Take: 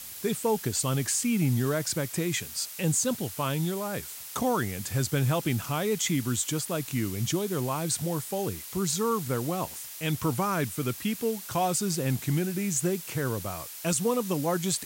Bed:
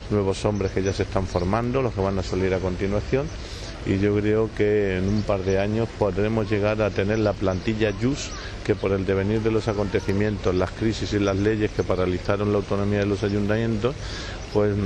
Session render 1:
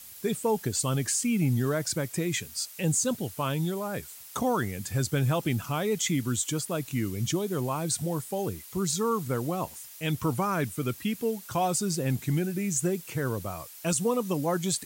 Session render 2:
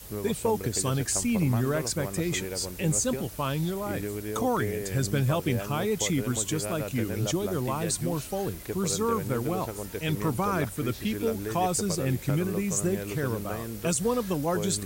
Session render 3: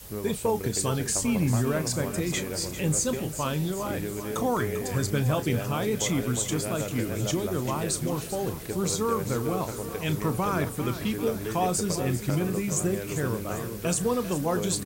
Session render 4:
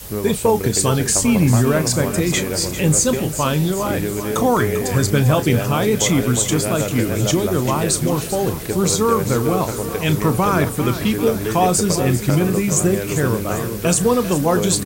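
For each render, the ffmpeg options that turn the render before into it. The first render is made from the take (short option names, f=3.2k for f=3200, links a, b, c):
-af "afftdn=nr=7:nf=-42"
-filter_complex "[1:a]volume=-13dB[a];[0:a][a]amix=inputs=2:normalize=0"
-filter_complex "[0:a]asplit=2[a][b];[b]adelay=33,volume=-12.5dB[c];[a][c]amix=inputs=2:normalize=0,aecho=1:1:396|792|1188|1584|1980|2376:0.251|0.146|0.0845|0.049|0.0284|0.0165"
-af "volume=10dB"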